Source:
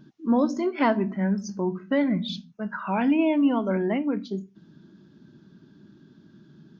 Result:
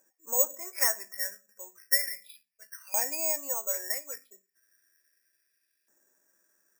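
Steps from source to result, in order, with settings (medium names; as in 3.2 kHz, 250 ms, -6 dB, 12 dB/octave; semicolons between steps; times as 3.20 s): cascade formant filter e; LFO high-pass saw up 0.34 Hz 830–2600 Hz; careless resampling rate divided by 6×, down filtered, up zero stuff; trim +5 dB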